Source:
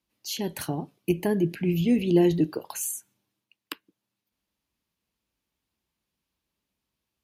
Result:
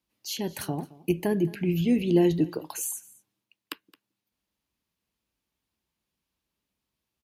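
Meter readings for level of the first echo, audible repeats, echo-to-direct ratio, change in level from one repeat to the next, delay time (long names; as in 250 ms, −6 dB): −21.0 dB, 1, −21.0 dB, repeats not evenly spaced, 219 ms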